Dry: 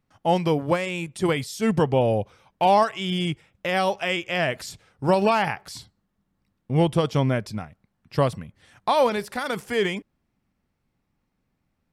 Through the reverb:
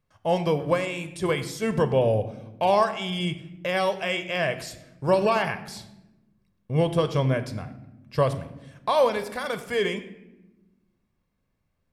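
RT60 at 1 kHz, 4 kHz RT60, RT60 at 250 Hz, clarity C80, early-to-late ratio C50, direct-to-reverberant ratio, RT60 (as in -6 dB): 0.85 s, 0.65 s, 1.7 s, 14.5 dB, 13.0 dB, 10.0 dB, 1.0 s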